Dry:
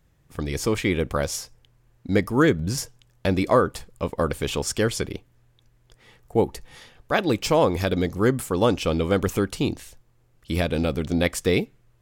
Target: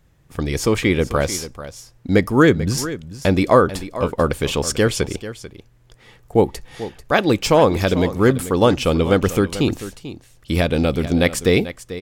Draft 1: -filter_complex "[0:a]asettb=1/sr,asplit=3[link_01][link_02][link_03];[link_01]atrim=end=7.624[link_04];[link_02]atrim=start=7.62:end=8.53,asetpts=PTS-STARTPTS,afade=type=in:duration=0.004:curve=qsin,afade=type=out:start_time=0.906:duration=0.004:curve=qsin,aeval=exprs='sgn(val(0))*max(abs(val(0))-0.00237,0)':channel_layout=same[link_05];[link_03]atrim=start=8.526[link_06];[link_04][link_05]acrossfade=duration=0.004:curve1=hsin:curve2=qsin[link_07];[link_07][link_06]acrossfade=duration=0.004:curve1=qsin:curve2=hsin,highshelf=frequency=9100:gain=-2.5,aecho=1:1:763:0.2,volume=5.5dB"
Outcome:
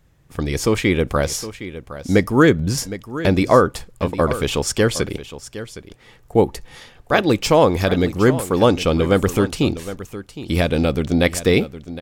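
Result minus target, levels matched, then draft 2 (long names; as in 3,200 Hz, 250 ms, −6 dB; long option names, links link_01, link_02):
echo 322 ms late
-filter_complex "[0:a]asettb=1/sr,asplit=3[link_01][link_02][link_03];[link_01]atrim=end=7.624[link_04];[link_02]atrim=start=7.62:end=8.53,asetpts=PTS-STARTPTS,afade=type=in:duration=0.004:curve=qsin,afade=type=out:start_time=0.906:duration=0.004:curve=qsin,aeval=exprs='sgn(val(0))*max(abs(val(0))-0.00237,0)':channel_layout=same[link_05];[link_03]atrim=start=8.526[link_06];[link_04][link_05]acrossfade=duration=0.004:curve1=hsin:curve2=qsin[link_07];[link_07][link_06]acrossfade=duration=0.004:curve1=qsin:curve2=hsin,highshelf=frequency=9100:gain=-2.5,aecho=1:1:441:0.2,volume=5.5dB"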